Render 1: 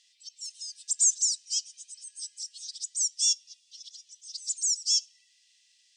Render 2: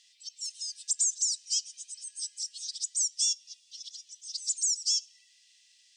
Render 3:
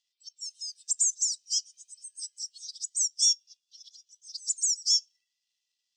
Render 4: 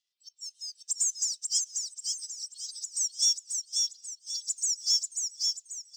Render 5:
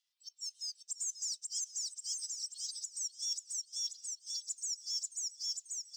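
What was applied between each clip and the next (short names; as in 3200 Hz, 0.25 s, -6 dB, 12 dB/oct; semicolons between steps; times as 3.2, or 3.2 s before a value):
compressor 6:1, threshold -27 dBFS, peak gain reduction 9 dB; gain +2.5 dB
in parallel at -8.5 dB: companded quantiser 4-bit; on the sum: spectral expander 1.5:1; gain +1.5 dB
dynamic EQ 4200 Hz, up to +3 dB, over -39 dBFS, Q 1; in parallel at -5 dB: short-mantissa float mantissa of 2-bit; on the sum: feedback echo 0.538 s, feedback 40%, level -3.5 dB; gain -7.5 dB
HPF 800 Hz 24 dB/oct; reverse; compressor 6:1, threshold -36 dBFS, peak gain reduction 14.5 dB; reverse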